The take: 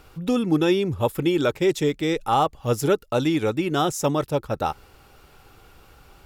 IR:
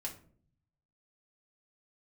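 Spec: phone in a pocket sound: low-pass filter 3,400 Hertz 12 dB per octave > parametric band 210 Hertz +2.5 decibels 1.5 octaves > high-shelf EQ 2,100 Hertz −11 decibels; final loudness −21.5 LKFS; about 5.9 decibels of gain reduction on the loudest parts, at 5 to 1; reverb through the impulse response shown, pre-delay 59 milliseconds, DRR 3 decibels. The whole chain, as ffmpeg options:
-filter_complex "[0:a]acompressor=threshold=-22dB:ratio=5,asplit=2[link_01][link_02];[1:a]atrim=start_sample=2205,adelay=59[link_03];[link_02][link_03]afir=irnorm=-1:irlink=0,volume=-2dB[link_04];[link_01][link_04]amix=inputs=2:normalize=0,lowpass=3400,equalizer=frequency=210:width_type=o:width=1.5:gain=2.5,highshelf=frequency=2100:gain=-11,volume=3.5dB"

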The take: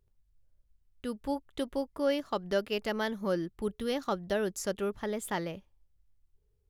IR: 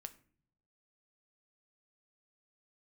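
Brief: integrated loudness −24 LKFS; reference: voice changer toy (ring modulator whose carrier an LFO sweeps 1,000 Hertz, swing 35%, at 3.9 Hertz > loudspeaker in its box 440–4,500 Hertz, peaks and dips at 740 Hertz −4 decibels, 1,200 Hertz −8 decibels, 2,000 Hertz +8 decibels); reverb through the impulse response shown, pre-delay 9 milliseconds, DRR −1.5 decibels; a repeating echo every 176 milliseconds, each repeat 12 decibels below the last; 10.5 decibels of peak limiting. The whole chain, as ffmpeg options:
-filter_complex "[0:a]alimiter=level_in=3dB:limit=-24dB:level=0:latency=1,volume=-3dB,aecho=1:1:176|352|528:0.251|0.0628|0.0157,asplit=2[link_01][link_02];[1:a]atrim=start_sample=2205,adelay=9[link_03];[link_02][link_03]afir=irnorm=-1:irlink=0,volume=7dB[link_04];[link_01][link_04]amix=inputs=2:normalize=0,aeval=exprs='val(0)*sin(2*PI*1000*n/s+1000*0.35/3.9*sin(2*PI*3.9*n/s))':channel_layout=same,highpass=440,equalizer=frequency=740:width_type=q:width=4:gain=-4,equalizer=frequency=1200:width_type=q:width=4:gain=-8,equalizer=frequency=2000:width_type=q:width=4:gain=8,lowpass=frequency=4500:width=0.5412,lowpass=frequency=4500:width=1.3066,volume=11.5dB"

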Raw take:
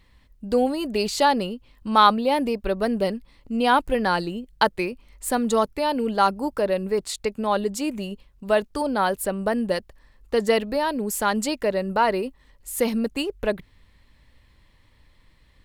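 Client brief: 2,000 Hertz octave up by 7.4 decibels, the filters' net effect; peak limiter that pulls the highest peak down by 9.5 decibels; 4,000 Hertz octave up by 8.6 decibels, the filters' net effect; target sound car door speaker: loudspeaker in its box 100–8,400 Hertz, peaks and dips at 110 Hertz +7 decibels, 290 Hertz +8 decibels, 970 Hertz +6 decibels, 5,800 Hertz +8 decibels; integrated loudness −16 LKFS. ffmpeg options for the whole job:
ffmpeg -i in.wav -af "equalizer=frequency=2000:width_type=o:gain=8,equalizer=frequency=4000:width_type=o:gain=7,alimiter=limit=-8dB:level=0:latency=1,highpass=100,equalizer=frequency=110:width_type=q:width=4:gain=7,equalizer=frequency=290:width_type=q:width=4:gain=8,equalizer=frequency=970:width_type=q:width=4:gain=6,equalizer=frequency=5800:width_type=q:width=4:gain=8,lowpass=frequency=8400:width=0.5412,lowpass=frequency=8400:width=1.3066,volume=4.5dB" out.wav

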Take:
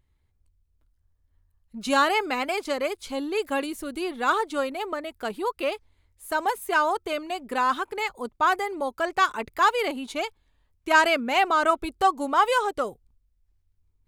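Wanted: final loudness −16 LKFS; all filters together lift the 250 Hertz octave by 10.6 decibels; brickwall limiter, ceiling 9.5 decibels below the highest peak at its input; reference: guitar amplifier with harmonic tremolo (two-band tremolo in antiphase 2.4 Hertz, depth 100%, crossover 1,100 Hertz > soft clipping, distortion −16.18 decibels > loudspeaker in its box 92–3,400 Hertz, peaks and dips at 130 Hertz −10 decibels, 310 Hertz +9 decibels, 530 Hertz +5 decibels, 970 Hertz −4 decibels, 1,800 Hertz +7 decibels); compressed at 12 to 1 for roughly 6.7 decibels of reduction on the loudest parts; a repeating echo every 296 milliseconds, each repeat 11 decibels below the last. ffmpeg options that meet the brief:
ffmpeg -i in.wav -filter_complex "[0:a]equalizer=frequency=250:width_type=o:gain=6,acompressor=threshold=-21dB:ratio=12,alimiter=limit=-21.5dB:level=0:latency=1,aecho=1:1:296|592|888:0.282|0.0789|0.0221,acrossover=split=1100[link_01][link_02];[link_01]aeval=exprs='val(0)*(1-1/2+1/2*cos(2*PI*2.4*n/s))':channel_layout=same[link_03];[link_02]aeval=exprs='val(0)*(1-1/2-1/2*cos(2*PI*2.4*n/s))':channel_layout=same[link_04];[link_03][link_04]amix=inputs=2:normalize=0,asoftclip=threshold=-27.5dB,highpass=92,equalizer=frequency=130:width_type=q:width=4:gain=-10,equalizer=frequency=310:width_type=q:width=4:gain=9,equalizer=frequency=530:width_type=q:width=4:gain=5,equalizer=frequency=970:width_type=q:width=4:gain=-4,equalizer=frequency=1800:width_type=q:width=4:gain=7,lowpass=frequency=3400:width=0.5412,lowpass=frequency=3400:width=1.3066,volume=17.5dB" out.wav

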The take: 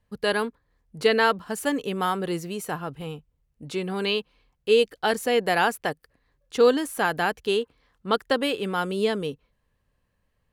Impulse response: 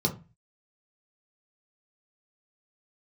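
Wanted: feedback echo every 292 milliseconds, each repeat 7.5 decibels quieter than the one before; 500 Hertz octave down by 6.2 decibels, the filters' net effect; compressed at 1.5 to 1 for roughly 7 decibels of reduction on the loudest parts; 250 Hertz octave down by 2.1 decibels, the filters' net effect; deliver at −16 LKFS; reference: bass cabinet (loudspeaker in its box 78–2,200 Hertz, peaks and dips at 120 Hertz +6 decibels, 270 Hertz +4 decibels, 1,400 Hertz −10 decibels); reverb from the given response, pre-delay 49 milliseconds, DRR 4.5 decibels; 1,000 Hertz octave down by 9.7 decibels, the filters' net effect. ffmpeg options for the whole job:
-filter_complex "[0:a]equalizer=frequency=250:width_type=o:gain=-3.5,equalizer=frequency=500:width_type=o:gain=-4.5,equalizer=frequency=1000:width_type=o:gain=-9,acompressor=threshold=-39dB:ratio=1.5,aecho=1:1:292|584|876|1168|1460:0.422|0.177|0.0744|0.0312|0.0131,asplit=2[link_01][link_02];[1:a]atrim=start_sample=2205,adelay=49[link_03];[link_02][link_03]afir=irnorm=-1:irlink=0,volume=-13dB[link_04];[link_01][link_04]amix=inputs=2:normalize=0,highpass=frequency=78:width=0.5412,highpass=frequency=78:width=1.3066,equalizer=frequency=120:width_type=q:width=4:gain=6,equalizer=frequency=270:width_type=q:width=4:gain=4,equalizer=frequency=1400:width_type=q:width=4:gain=-10,lowpass=frequency=2200:width=0.5412,lowpass=frequency=2200:width=1.3066,volume=15.5dB"

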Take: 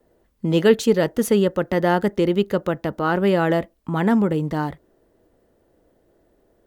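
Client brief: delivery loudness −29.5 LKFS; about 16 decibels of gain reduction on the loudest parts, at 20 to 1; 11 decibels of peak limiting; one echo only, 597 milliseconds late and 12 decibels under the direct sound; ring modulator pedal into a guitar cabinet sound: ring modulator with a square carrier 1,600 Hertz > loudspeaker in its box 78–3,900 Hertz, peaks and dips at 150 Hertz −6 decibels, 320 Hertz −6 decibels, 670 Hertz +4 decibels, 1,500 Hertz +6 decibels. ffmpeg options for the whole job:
ffmpeg -i in.wav -af "acompressor=threshold=-26dB:ratio=20,alimiter=level_in=4dB:limit=-24dB:level=0:latency=1,volume=-4dB,aecho=1:1:597:0.251,aeval=exprs='val(0)*sgn(sin(2*PI*1600*n/s))':channel_layout=same,highpass=78,equalizer=frequency=150:width_type=q:width=4:gain=-6,equalizer=frequency=320:width_type=q:width=4:gain=-6,equalizer=frequency=670:width_type=q:width=4:gain=4,equalizer=frequency=1500:width_type=q:width=4:gain=6,lowpass=frequency=3900:width=0.5412,lowpass=frequency=3900:width=1.3066,volume=4dB" out.wav

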